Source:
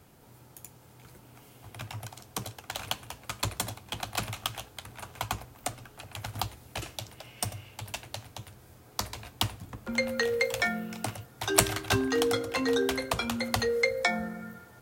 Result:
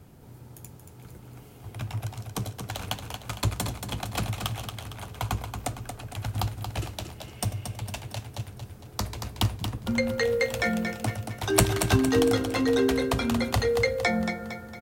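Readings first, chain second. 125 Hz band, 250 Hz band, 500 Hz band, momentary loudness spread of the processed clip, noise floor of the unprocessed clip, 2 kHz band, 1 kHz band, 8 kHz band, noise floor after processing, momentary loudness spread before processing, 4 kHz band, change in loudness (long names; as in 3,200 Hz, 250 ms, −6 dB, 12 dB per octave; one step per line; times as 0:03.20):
+9.5 dB, +7.0 dB, +3.5 dB, 17 LU, −55 dBFS, +0.5 dB, +2.0 dB, 0.0 dB, −48 dBFS, 18 LU, 0.0 dB, +3.0 dB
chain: low-shelf EQ 410 Hz +10.5 dB
repeating echo 229 ms, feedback 47%, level −7 dB
level −1 dB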